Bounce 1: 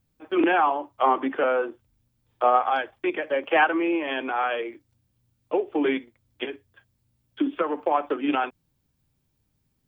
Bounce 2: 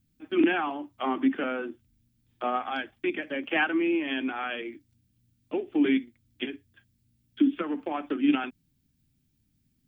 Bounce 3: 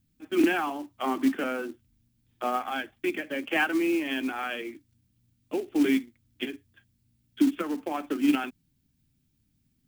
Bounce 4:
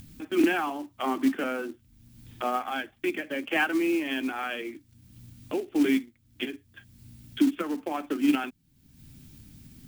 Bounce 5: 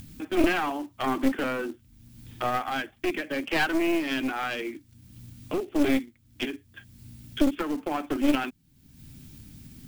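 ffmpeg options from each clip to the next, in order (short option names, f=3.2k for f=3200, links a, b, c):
-af "equalizer=f=250:t=o:w=1:g=8,equalizer=f=500:t=o:w=1:g=-11,equalizer=f=1k:t=o:w=1:g=-10"
-af "acrusher=bits=5:mode=log:mix=0:aa=0.000001"
-af "acompressor=mode=upward:threshold=-31dB:ratio=2.5"
-af "aeval=exprs='clip(val(0),-1,0.0299)':c=same,volume=3dB"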